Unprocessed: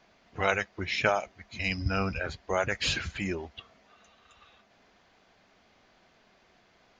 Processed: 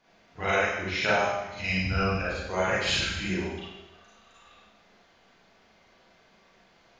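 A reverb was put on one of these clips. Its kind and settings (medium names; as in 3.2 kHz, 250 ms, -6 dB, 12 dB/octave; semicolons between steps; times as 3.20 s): Schroeder reverb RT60 1 s, combs from 33 ms, DRR -9 dB; trim -6.5 dB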